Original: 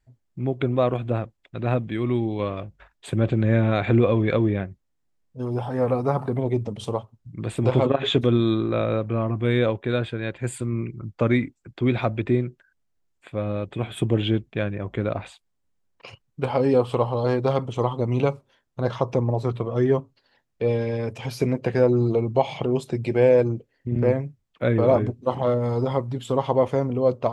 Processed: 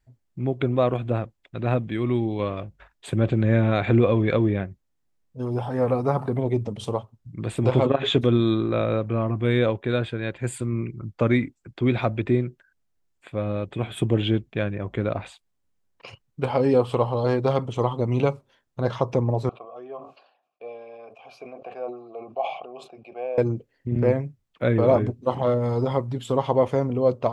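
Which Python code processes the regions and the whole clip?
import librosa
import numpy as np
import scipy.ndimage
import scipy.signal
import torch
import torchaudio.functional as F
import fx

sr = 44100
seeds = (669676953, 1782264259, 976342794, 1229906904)

y = fx.chain(x, sr, fx.vowel_filter(vowel='a'),
    fx.peak_eq(hz=84.0, db=-13.0, octaves=1.6),
    fx.sustainer(db_per_s=85.0), at=(19.49, 23.38))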